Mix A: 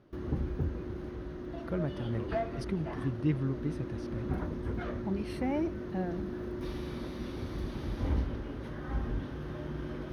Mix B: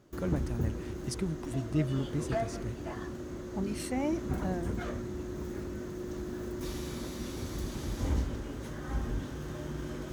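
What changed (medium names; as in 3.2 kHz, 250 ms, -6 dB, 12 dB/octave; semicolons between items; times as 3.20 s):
speech: entry -1.50 s; master: remove boxcar filter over 6 samples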